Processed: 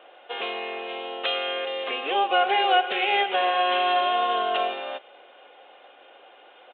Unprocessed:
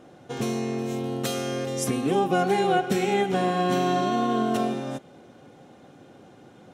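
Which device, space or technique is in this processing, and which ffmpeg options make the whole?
musical greeting card: -af "aresample=8000,aresample=44100,highpass=frequency=530:width=0.5412,highpass=frequency=530:width=1.3066,equalizer=frequency=2800:width_type=o:width=0.57:gain=8.5,volume=4dB"

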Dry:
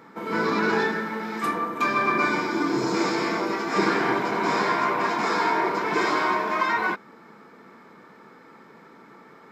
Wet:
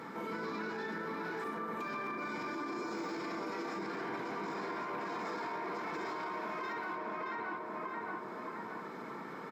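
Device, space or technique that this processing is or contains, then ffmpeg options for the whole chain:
podcast mastering chain: -filter_complex "[0:a]asettb=1/sr,asplit=3[link_01][link_02][link_03];[link_01]atrim=end=2.524[link_04];[link_02]atrim=start=2.52:end=3.17,asetpts=PTS-STARTPTS,afade=type=in:duration=0.004:curve=qsin,afade=type=out:start_time=0.646:duration=0.004:curve=qsin,highpass=frequency=220:width=0.5412,highpass=frequency=220:width=1.3066[link_05];[link_03]atrim=start=3.166[link_06];[link_04][link_05]acrossfade=duration=0.004:curve1=hsin:curve2=qsin[link_07];[link_07][link_06]acrossfade=duration=0.004:curve1=qsin:curve2=hsin,highpass=86,asplit=2[link_08][link_09];[link_09]adelay=621,lowpass=frequency=1900:poles=1,volume=-4dB,asplit=2[link_10][link_11];[link_11]adelay=621,lowpass=frequency=1900:poles=1,volume=0.42,asplit=2[link_12][link_13];[link_13]adelay=621,lowpass=frequency=1900:poles=1,volume=0.42,asplit=2[link_14][link_15];[link_15]adelay=621,lowpass=frequency=1900:poles=1,volume=0.42,asplit=2[link_16][link_17];[link_17]adelay=621,lowpass=frequency=1900:poles=1,volume=0.42[link_18];[link_08][link_10][link_12][link_14][link_16][link_18]amix=inputs=6:normalize=0,deesser=0.95,acompressor=threshold=-44dB:ratio=2.5,alimiter=level_in=11dB:limit=-24dB:level=0:latency=1:release=23,volume=-11dB,volume=4dB" -ar 48000 -c:a libmp3lame -b:a 96k

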